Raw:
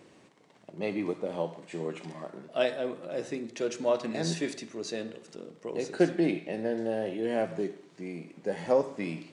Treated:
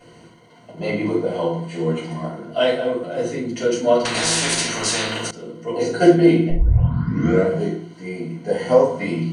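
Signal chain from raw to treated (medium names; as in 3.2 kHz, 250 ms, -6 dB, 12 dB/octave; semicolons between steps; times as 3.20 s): 6.49 s: tape start 1.07 s; rippled EQ curve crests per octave 1.9, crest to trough 13 dB; reverberation RT60 0.40 s, pre-delay 3 ms, DRR -8 dB; 4.05–5.31 s: spectrum-flattening compressor 4:1; trim -1.5 dB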